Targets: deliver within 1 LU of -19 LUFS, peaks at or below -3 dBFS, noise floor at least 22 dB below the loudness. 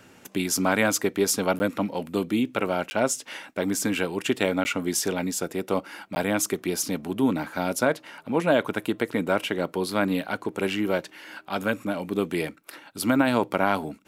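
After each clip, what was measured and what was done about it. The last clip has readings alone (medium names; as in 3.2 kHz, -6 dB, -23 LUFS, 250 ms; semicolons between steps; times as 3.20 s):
dropouts 4; longest dropout 10 ms; loudness -26.0 LUFS; peak level -6.0 dBFS; loudness target -19.0 LUFS
-> interpolate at 1.59/2.90/4.64/6.15 s, 10 ms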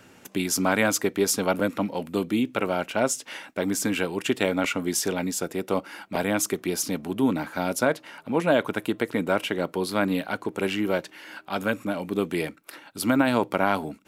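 dropouts 0; loudness -26.0 LUFS; peak level -6.0 dBFS; loudness target -19.0 LUFS
-> trim +7 dB; peak limiter -3 dBFS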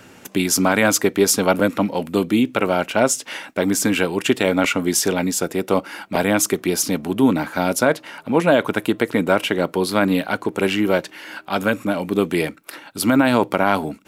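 loudness -19.5 LUFS; peak level -3.0 dBFS; noise floor -47 dBFS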